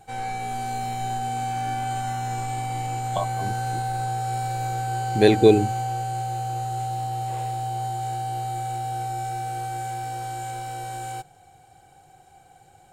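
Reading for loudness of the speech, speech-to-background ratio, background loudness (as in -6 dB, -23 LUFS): -20.0 LUFS, 9.0 dB, -29.0 LUFS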